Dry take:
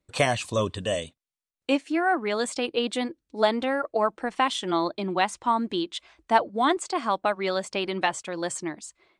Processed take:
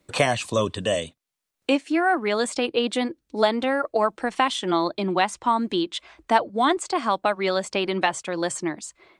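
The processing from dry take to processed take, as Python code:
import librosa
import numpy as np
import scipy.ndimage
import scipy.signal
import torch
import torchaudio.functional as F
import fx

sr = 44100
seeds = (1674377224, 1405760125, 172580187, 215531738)

y = fx.band_squash(x, sr, depth_pct=40)
y = F.gain(torch.from_numpy(y), 2.5).numpy()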